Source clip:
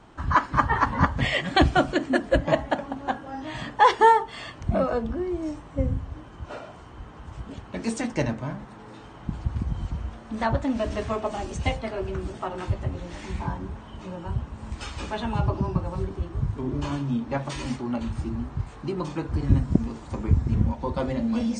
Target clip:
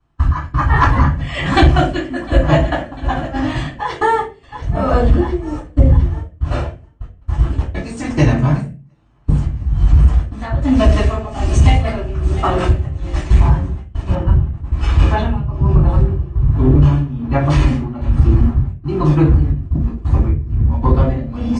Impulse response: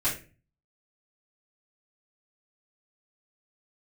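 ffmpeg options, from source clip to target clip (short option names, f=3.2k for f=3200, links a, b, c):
-filter_complex "[0:a]equalizer=f=75:t=o:w=1.8:g=7,aecho=1:1:700|1400|2100|2800|3500:0.141|0.0819|0.0475|0.0276|0.016,acompressor=threshold=-23dB:ratio=12,agate=range=-33dB:threshold=-32dB:ratio=16:detection=peak,tremolo=f=1.2:d=0.83[a];[1:a]atrim=start_sample=2205,asetrate=48510,aresample=44100[b];[a][b]afir=irnorm=-1:irlink=0,acontrast=80,asetnsamples=n=441:p=0,asendcmd='14.15 highshelf g -11',highshelf=f=3.6k:g=2.5,volume=1dB"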